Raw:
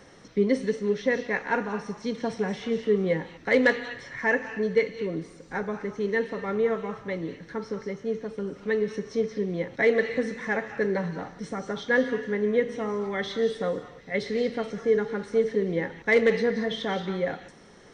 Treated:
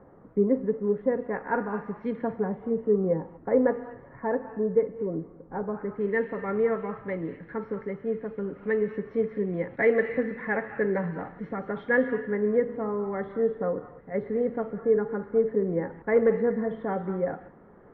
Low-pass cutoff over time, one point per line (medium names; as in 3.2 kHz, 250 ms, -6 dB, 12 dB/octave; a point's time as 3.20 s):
low-pass 24 dB/octave
1.17 s 1.2 kHz
2.10 s 2.1 kHz
2.60 s 1.1 kHz
5.65 s 1.1 kHz
6.09 s 2.1 kHz
12.08 s 2.1 kHz
12.82 s 1.4 kHz